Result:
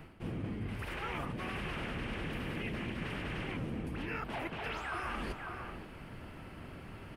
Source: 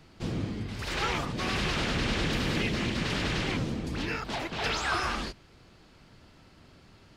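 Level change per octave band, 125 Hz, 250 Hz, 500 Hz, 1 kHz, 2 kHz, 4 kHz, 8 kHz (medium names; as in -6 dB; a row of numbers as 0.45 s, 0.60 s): -7.0 dB, -7.5 dB, -7.5 dB, -7.5 dB, -8.0 dB, -14.0 dB, -17.5 dB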